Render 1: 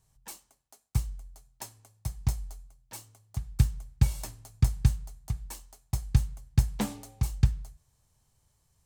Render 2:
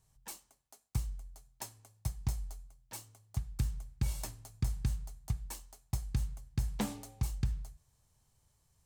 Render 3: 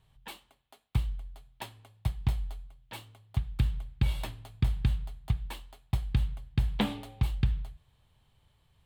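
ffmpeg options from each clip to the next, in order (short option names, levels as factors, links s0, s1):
-af "alimiter=limit=0.1:level=0:latency=1:release=74,volume=0.794"
-af "highshelf=f=4500:t=q:w=3:g=-10.5,volume=2"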